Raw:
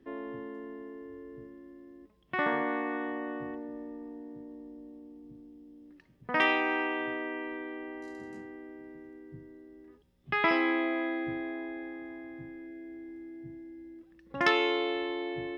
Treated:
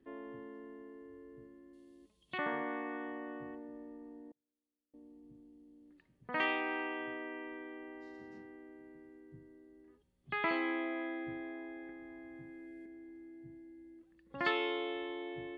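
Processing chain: knee-point frequency compression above 3.2 kHz 1.5:1; 1.73–2.38 s: resonant high shelf 2.5 kHz +11.5 dB, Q 1.5; 4.31–4.94 s: inverted gate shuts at -44 dBFS, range -39 dB; 11.89–12.86 s: three bands compressed up and down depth 100%; trim -7.5 dB

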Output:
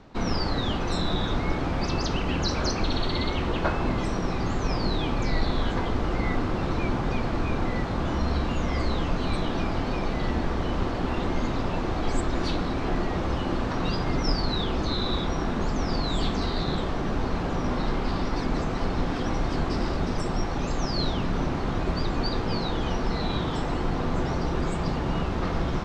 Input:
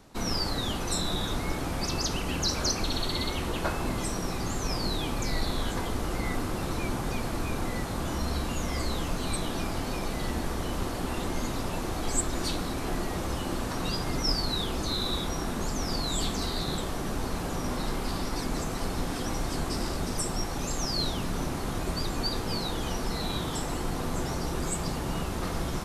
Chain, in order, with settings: distance through air 190 m; trim +5 dB

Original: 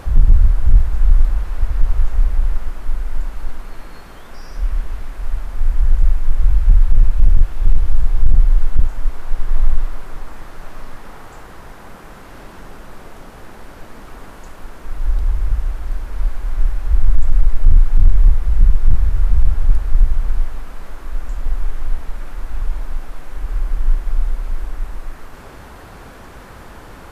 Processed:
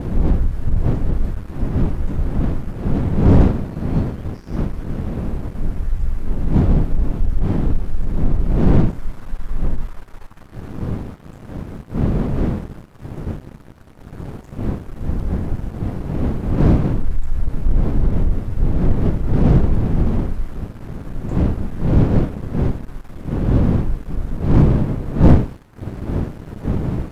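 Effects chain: comb filter that takes the minimum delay 9.5 ms; wind noise 190 Hz -13 dBFS; waveshaping leveller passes 2; trim -13 dB

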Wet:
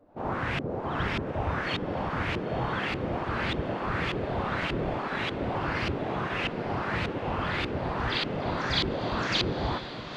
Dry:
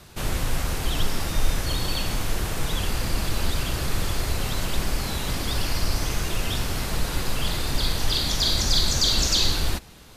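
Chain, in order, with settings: LFO low-pass saw up 1.7 Hz 350–2800 Hz; echo that smears into a reverb 974 ms, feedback 66%, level -11 dB; spectral gate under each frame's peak -10 dB weak

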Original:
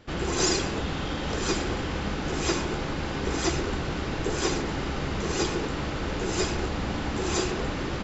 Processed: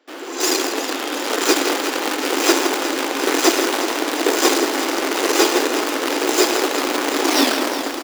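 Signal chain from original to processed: tape stop on the ending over 0.83 s; level rider gain up to 12 dB; in parallel at -5.5 dB: companded quantiser 2-bit; on the sum: elliptic high-pass 270 Hz, stop band 40 dB; on a send: delay 164 ms -9.5 dB; on the sum: bit-crushed delay 363 ms, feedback 80%, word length 6-bit, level -11 dB; trim -5 dB

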